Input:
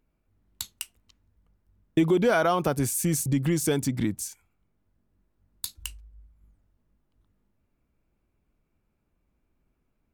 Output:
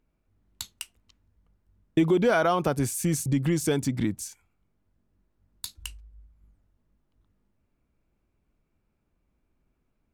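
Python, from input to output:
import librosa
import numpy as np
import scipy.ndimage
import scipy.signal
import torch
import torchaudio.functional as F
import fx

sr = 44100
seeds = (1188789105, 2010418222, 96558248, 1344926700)

y = fx.high_shelf(x, sr, hz=11000.0, db=-9.0)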